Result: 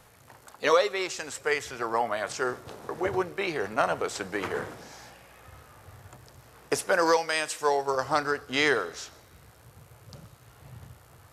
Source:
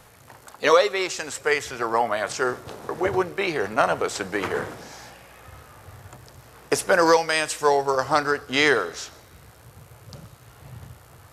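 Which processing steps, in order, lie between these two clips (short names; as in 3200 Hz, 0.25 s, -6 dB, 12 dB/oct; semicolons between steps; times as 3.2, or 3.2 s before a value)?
6.81–7.88 low shelf 130 Hz -10.5 dB; gain -5 dB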